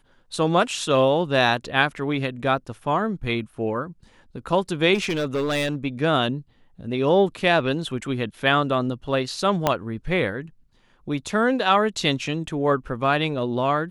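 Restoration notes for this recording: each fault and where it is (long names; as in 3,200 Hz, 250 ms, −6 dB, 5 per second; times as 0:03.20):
0:04.94–0:05.75: clipping −20 dBFS
0:09.67: click −5 dBFS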